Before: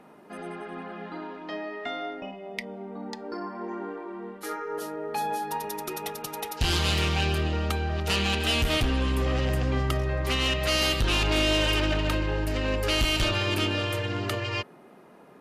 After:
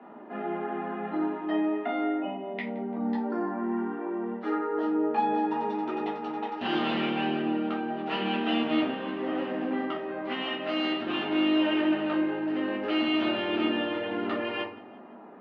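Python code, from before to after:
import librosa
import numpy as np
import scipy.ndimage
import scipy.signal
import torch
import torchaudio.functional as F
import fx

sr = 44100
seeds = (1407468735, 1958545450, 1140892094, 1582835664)

y = fx.peak_eq(x, sr, hz=560.0, db=-14.0, octaves=0.56, at=(3.58, 3.99))
y = fx.rider(y, sr, range_db=4, speed_s=2.0)
y = fx.cabinet(y, sr, low_hz=220.0, low_slope=24, high_hz=2700.0, hz=(230.0, 790.0, 2300.0), db=(4, 6, -5))
y = fx.echo_feedback(y, sr, ms=171, feedback_pct=48, wet_db=-21)
y = fx.room_shoebox(y, sr, seeds[0], volume_m3=210.0, walls='furnished', distance_m=3.1)
y = y * 10.0 ** (-7.0 / 20.0)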